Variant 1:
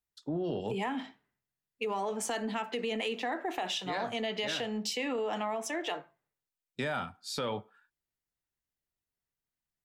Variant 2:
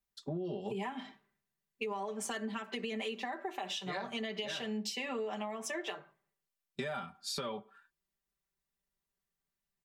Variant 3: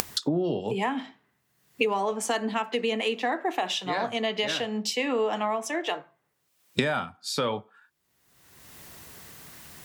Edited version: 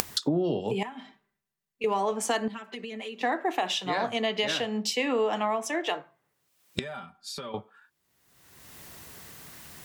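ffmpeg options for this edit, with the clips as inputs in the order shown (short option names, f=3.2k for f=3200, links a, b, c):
-filter_complex "[1:a]asplit=3[a][b][c];[2:a]asplit=4[d][e][f][g];[d]atrim=end=0.832[h];[a]atrim=start=0.828:end=1.842[i];[e]atrim=start=1.838:end=2.482[j];[b]atrim=start=2.478:end=3.212[k];[f]atrim=start=3.208:end=6.792[l];[c]atrim=start=6.788:end=7.542[m];[g]atrim=start=7.538[n];[h][i]acrossfade=d=0.004:c1=hsin:c2=hsin[o];[o][j]acrossfade=d=0.004:c1=hsin:c2=hsin[p];[p][k]acrossfade=d=0.004:c1=hsin:c2=hsin[q];[q][l]acrossfade=d=0.004:c1=hsin:c2=hsin[r];[r][m]acrossfade=d=0.004:c1=hsin:c2=hsin[s];[s][n]acrossfade=d=0.004:c1=hsin:c2=hsin"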